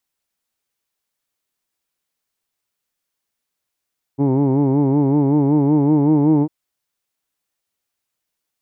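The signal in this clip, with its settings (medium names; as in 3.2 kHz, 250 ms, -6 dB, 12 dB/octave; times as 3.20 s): formant vowel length 2.30 s, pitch 135 Hz, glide +2 st, F1 330 Hz, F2 890 Hz, F3 2.2 kHz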